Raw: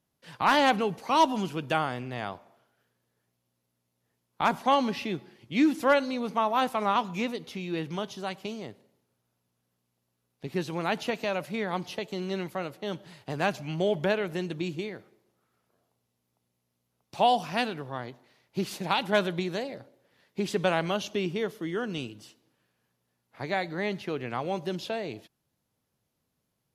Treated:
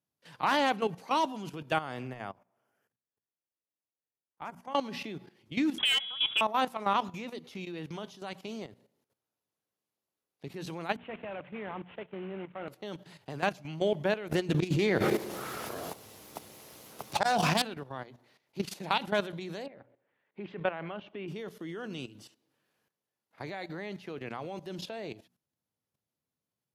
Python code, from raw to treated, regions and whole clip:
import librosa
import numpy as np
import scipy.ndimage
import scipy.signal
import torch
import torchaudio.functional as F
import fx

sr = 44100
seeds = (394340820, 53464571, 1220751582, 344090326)

y = fx.chain(x, sr, fx.peak_eq(hz=3900.0, db=-14.0, octaves=0.4),
    fx.level_steps(step_db=19), at=(2.07, 4.75))
y = fx.chain(y, sr, fx.freq_invert(carrier_hz=3600),
    fx.clip_hard(threshold_db=-18.5),
    fx.band_squash(depth_pct=100), at=(5.78, 6.41))
y = fx.chain(y, sr, fx.cvsd(bps=16000),
    fx.band_widen(depth_pct=70), at=(10.96, 12.68))
y = fx.chain(y, sr, fx.self_delay(depth_ms=0.24),
    fx.auto_swell(attack_ms=163.0),
    fx.env_flatten(amount_pct=100), at=(14.31, 17.62))
y = fx.chain(y, sr, fx.lowpass(hz=2600.0, slope=24),
    fx.low_shelf(hz=460.0, db=-4.5), at=(19.66, 21.28))
y = scipy.signal.sosfilt(scipy.signal.butter(2, 72.0, 'highpass', fs=sr, output='sos'), y)
y = fx.hum_notches(y, sr, base_hz=60, count=4)
y = fx.level_steps(y, sr, step_db=13)